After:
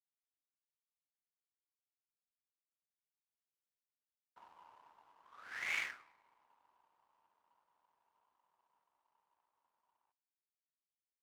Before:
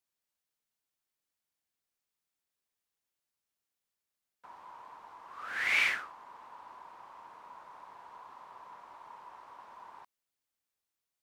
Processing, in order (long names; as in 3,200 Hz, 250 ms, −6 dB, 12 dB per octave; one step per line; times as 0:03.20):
source passing by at 0:03.58, 9 m/s, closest 2.7 metres
dense smooth reverb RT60 1.7 s, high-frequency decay 0.7×, DRR 17.5 dB
power curve on the samples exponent 1.4
level +9.5 dB